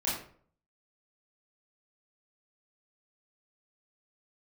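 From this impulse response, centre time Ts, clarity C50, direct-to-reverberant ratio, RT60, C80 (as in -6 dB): 46 ms, 3.0 dB, -8.5 dB, 0.50 s, 7.0 dB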